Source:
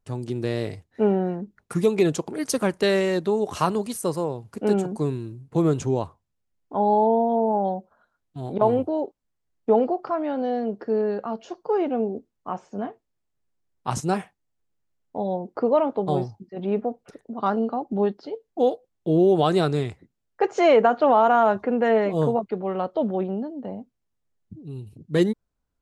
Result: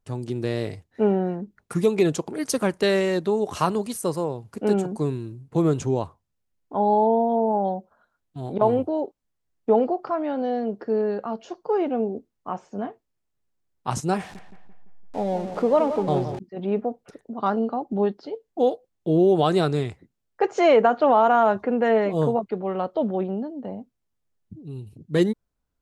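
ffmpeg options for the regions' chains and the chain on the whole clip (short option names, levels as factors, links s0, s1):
-filter_complex "[0:a]asettb=1/sr,asplit=3[s0][s1][s2];[s0]atrim=end=14.184[s3];[s1]atrim=start=14.18:end=16.39,asetpts=PTS-STARTPTS,afade=t=in:d=0.004:c=qsin,afade=t=out:st=2.206:d=0.004:c=qsin,aeval=exprs='val(0)+0.5*0.0141*sgn(val(0))':c=same,lowpass=8300,asplit=2[s4][s5];[s5]adelay=170,lowpass=f=2600:p=1,volume=0.316,asplit=2[s6][s7];[s7]adelay=170,lowpass=f=2600:p=1,volume=0.46,asplit=2[s8][s9];[s9]adelay=170,lowpass=f=2600:p=1,volume=0.46,asplit=2[s10][s11];[s11]adelay=170,lowpass=f=2600:p=1,volume=0.46,asplit=2[s12][s13];[s13]adelay=170,lowpass=f=2600:p=1,volume=0.46[s14];[s4][s6][s8][s10][s12][s14]amix=inputs=6:normalize=0,atrim=end_sample=97461[s15];[s2]atrim=start=16.386[s16];[s3][s15]acrossfade=d=0.004:c1=hsin:c2=qsin[s17];[s17][s16]acrossfade=d=0.004:c1=qsin:c2=hsin"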